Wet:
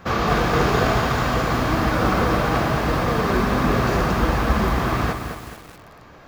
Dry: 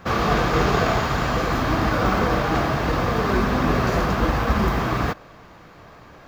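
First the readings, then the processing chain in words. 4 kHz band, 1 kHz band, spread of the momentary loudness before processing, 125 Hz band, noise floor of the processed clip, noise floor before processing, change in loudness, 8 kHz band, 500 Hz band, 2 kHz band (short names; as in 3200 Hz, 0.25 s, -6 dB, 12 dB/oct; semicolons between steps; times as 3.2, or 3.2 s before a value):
+1.0 dB, +1.0 dB, 3 LU, +1.0 dB, -45 dBFS, -46 dBFS, +1.0 dB, +2.0 dB, +1.0 dB, +1.0 dB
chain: lo-fi delay 0.217 s, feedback 55%, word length 6-bit, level -7 dB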